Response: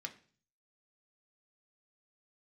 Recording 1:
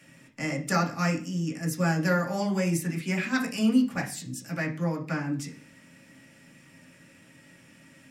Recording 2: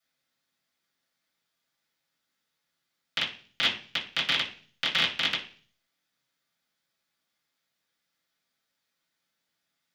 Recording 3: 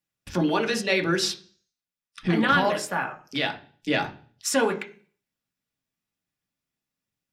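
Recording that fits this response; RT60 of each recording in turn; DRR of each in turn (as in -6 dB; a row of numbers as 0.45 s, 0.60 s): 3; 0.45 s, 0.45 s, 0.45 s; -4.0 dB, -11.5 dB, 3.0 dB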